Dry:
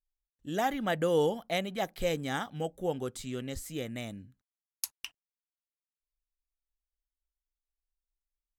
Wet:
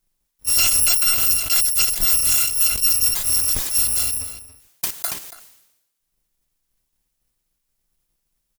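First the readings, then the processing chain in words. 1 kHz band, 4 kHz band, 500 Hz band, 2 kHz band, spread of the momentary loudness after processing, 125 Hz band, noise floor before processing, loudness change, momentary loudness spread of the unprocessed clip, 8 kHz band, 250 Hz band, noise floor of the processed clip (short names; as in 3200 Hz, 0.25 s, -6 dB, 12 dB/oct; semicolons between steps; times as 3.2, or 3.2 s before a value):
-1.5 dB, +19.0 dB, -12.5 dB, +9.5 dB, 13 LU, +1.0 dB, under -85 dBFS, +17.5 dB, 13 LU, +27.5 dB, -8.5 dB, -75 dBFS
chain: FFT order left unsorted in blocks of 256 samples; high shelf 4900 Hz +7 dB; in parallel at -5 dB: sine folder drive 17 dB, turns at -5.5 dBFS; on the sum: outdoor echo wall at 48 m, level -16 dB; sustainer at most 63 dB/s; gain -3.5 dB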